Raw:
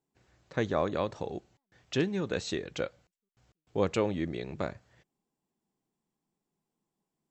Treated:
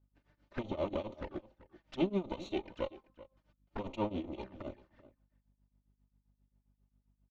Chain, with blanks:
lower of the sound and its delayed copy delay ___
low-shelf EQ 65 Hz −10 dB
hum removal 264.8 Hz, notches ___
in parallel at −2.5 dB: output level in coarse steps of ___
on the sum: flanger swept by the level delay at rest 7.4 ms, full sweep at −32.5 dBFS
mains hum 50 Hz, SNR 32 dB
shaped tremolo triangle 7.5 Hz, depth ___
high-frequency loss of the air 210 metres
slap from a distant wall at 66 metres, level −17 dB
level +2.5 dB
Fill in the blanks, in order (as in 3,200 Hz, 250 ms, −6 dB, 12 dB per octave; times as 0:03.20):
3.3 ms, 5, 21 dB, 95%